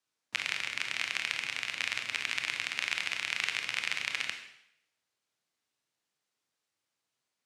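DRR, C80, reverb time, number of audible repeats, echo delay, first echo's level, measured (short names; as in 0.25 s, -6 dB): 4.5 dB, 10.0 dB, 0.75 s, none, none, none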